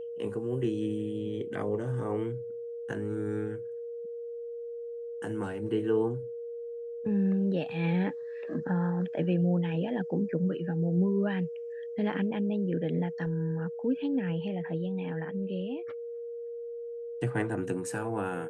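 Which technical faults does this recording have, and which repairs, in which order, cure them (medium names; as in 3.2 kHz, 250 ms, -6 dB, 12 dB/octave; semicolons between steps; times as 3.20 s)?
whine 470 Hz -36 dBFS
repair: band-stop 470 Hz, Q 30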